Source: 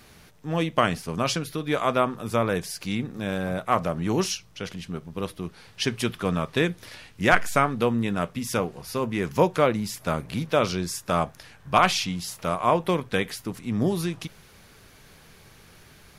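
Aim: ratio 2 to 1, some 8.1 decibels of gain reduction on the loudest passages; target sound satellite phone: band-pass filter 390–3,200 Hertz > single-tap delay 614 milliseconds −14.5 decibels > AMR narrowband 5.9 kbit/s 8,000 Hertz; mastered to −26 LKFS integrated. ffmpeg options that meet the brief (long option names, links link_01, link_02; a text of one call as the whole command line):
ffmpeg -i in.wav -af "acompressor=threshold=-28dB:ratio=2,highpass=390,lowpass=3200,aecho=1:1:614:0.188,volume=9dB" -ar 8000 -c:a libopencore_amrnb -b:a 5900 out.amr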